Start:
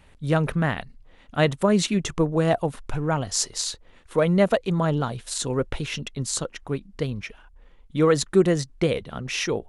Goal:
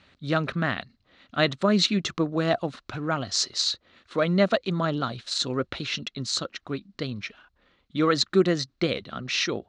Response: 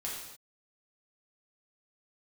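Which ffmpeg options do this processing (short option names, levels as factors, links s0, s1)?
-af "highpass=120,equalizer=f=150:t=q:w=4:g=-6,equalizer=f=460:t=q:w=4:g=-7,equalizer=f=890:t=q:w=4:g=-8,equalizer=f=1300:t=q:w=4:g=4,equalizer=f=4100:t=q:w=4:g=9,lowpass=f=6200:w=0.5412,lowpass=f=6200:w=1.3066"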